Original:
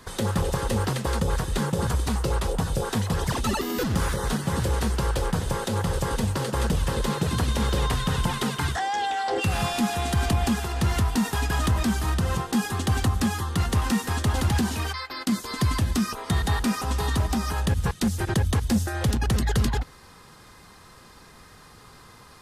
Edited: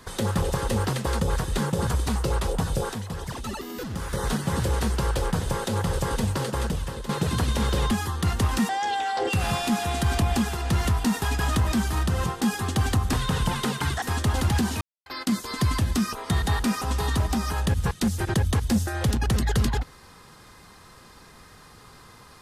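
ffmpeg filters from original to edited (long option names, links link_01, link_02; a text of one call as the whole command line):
ffmpeg -i in.wav -filter_complex "[0:a]asplit=10[link_01][link_02][link_03][link_04][link_05][link_06][link_07][link_08][link_09][link_10];[link_01]atrim=end=2.932[link_11];[link_02]atrim=start=2.928:end=4.132,asetpts=PTS-STARTPTS,volume=-7.5dB[link_12];[link_03]atrim=start=4.128:end=7.09,asetpts=PTS-STARTPTS,afade=type=out:start_time=2.292:duration=0.67:silence=0.251189[link_13];[link_04]atrim=start=7.09:end=7.912,asetpts=PTS-STARTPTS,afade=type=in:duration=0.004:curve=hsin:silence=0.251189[link_14];[link_05]atrim=start=13.238:end=14.022[link_15];[link_06]atrim=start=8.798:end=13.242[link_16];[link_07]atrim=start=7.908:end=8.802[link_17];[link_08]atrim=start=14.018:end=14.81,asetpts=PTS-STARTPTS,afade=type=out:start_time=0.788:duration=0.004:curve=hsin[link_18];[link_09]atrim=start=14.81:end=15.06,asetpts=PTS-STARTPTS,volume=0[link_19];[link_10]atrim=start=15.06,asetpts=PTS-STARTPTS,afade=type=in:duration=0.004:curve=hsin[link_20];[link_11][link_12]acrossfade=duration=0.004:curve1=hsin:curve2=hsin[link_21];[link_13][link_14]concat=n=2:v=0:a=1[link_22];[link_21][link_22]acrossfade=duration=0.004:curve1=hsin:curve2=hsin[link_23];[link_23][link_15]acrossfade=duration=0.004:curve1=hsin:curve2=hsin[link_24];[link_24][link_16]acrossfade=duration=0.004:curve1=hsin:curve2=hsin[link_25];[link_25][link_17]acrossfade=duration=0.004:curve1=hsin:curve2=hsin[link_26];[link_18][link_19][link_20]concat=n=3:v=0:a=1[link_27];[link_26][link_27]acrossfade=duration=0.004:curve1=hsin:curve2=hsin" out.wav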